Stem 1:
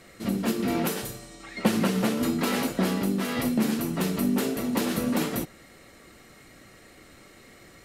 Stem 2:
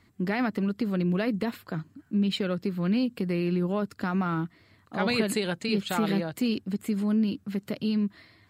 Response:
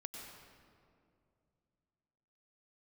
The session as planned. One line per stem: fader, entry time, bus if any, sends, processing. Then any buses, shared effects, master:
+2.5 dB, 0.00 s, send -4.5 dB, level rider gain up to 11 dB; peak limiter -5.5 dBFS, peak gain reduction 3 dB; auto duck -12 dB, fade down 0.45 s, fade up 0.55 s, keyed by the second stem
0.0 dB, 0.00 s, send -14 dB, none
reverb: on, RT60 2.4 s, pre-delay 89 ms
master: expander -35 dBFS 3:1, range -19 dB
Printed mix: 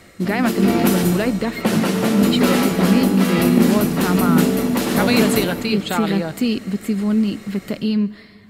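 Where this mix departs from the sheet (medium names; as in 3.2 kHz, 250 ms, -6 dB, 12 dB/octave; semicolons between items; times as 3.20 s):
stem 2 0.0 dB -> +6.5 dB; master: missing expander -35 dBFS 3:1, range -19 dB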